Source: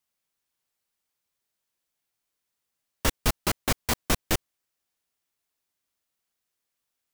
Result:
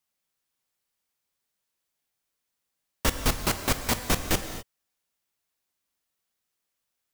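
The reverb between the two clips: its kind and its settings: non-linear reverb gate 0.28 s flat, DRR 7.5 dB

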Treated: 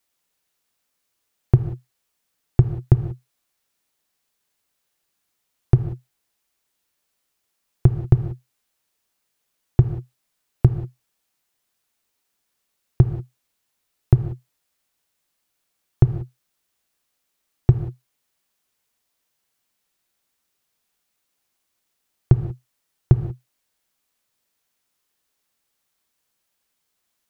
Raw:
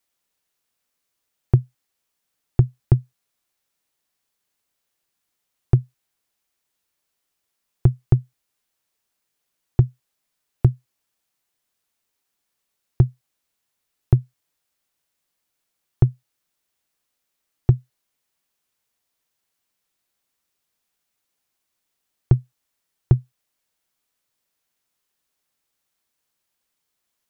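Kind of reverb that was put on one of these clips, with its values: non-linear reverb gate 0.21 s flat, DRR 8.5 dB; gain +2 dB

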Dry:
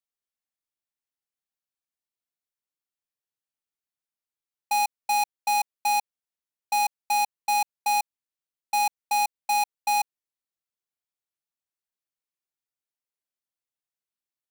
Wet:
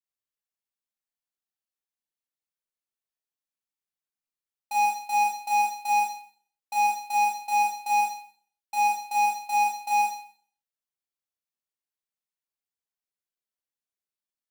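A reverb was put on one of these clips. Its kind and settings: Schroeder reverb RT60 0.52 s, combs from 29 ms, DRR -4 dB; gain -9 dB

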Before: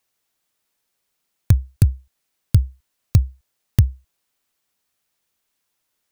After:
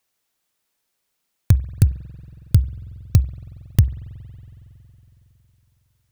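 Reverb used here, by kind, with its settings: spring tank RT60 3.7 s, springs 46 ms, chirp 25 ms, DRR 16.5 dB

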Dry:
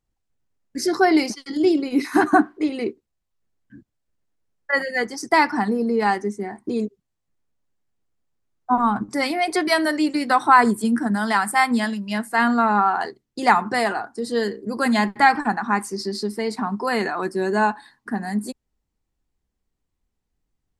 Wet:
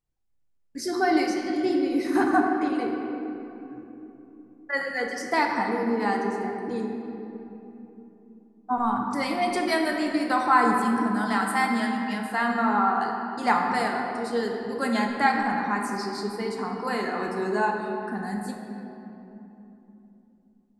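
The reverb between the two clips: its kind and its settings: shoebox room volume 170 m³, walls hard, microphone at 0.42 m; gain -7.5 dB

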